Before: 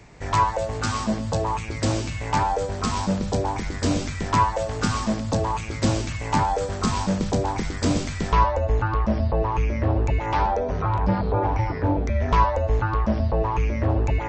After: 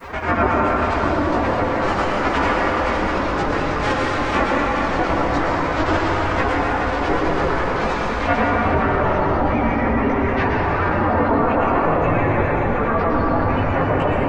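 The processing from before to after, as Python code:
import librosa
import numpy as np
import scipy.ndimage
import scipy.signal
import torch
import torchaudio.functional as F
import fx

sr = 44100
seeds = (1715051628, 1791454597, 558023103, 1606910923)

p1 = fx.spec_clip(x, sr, under_db=26)
p2 = scipy.signal.sosfilt(scipy.signal.butter(2, 1500.0, 'lowpass', fs=sr, output='sos'), p1)
p3 = fx.dereverb_blind(p2, sr, rt60_s=0.74)
p4 = fx.peak_eq(p3, sr, hz=66.0, db=-4.0, octaves=1.0)
p5 = fx.rider(p4, sr, range_db=4, speed_s=2.0)
p6 = p4 + F.gain(torch.from_numpy(p5), -1.0).numpy()
p7 = fx.granulator(p6, sr, seeds[0], grain_ms=100.0, per_s=20.0, spray_ms=100.0, spread_st=3)
p8 = fx.quant_dither(p7, sr, seeds[1], bits=12, dither='none')
p9 = fx.chorus_voices(p8, sr, voices=4, hz=0.32, base_ms=18, depth_ms=3.4, mix_pct=55)
p10 = fx.pitch_keep_formants(p9, sr, semitones=7.5)
p11 = p10 + fx.echo_single(p10, sr, ms=419, db=-8.5, dry=0)
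p12 = fx.rev_plate(p11, sr, seeds[2], rt60_s=2.3, hf_ratio=0.75, predelay_ms=100, drr_db=-0.5)
y = fx.env_flatten(p12, sr, amount_pct=50)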